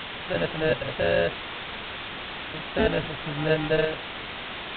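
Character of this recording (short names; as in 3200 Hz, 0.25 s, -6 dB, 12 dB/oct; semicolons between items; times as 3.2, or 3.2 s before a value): aliases and images of a low sample rate 1100 Hz, jitter 0%; tremolo saw up 1.3 Hz, depth 60%; a quantiser's noise floor 6-bit, dither triangular; G.726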